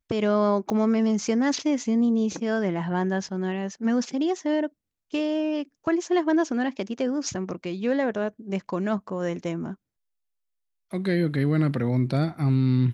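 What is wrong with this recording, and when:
0.7 pop -17 dBFS

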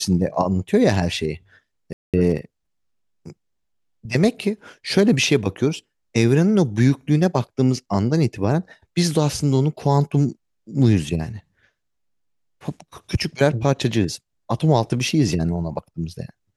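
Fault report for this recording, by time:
1.93–2.14 gap 0.207 s

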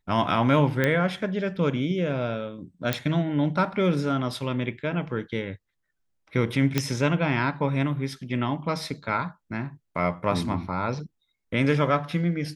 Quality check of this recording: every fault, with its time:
0.84 pop -10 dBFS
2.93 pop -8 dBFS
6.78 pop -7 dBFS

